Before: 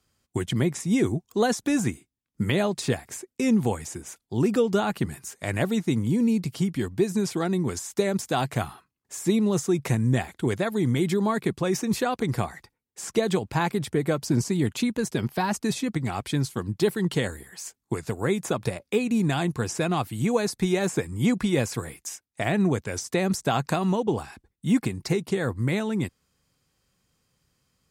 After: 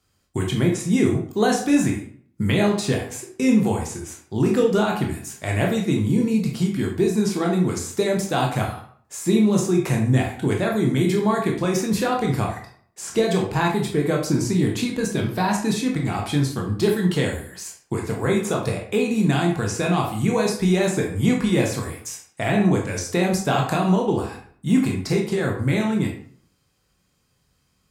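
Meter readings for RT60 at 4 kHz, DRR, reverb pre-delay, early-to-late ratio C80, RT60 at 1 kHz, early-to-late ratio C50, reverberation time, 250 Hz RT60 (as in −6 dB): 0.40 s, −0.5 dB, 16 ms, 10.5 dB, 0.50 s, 6.0 dB, 0.55 s, 0.55 s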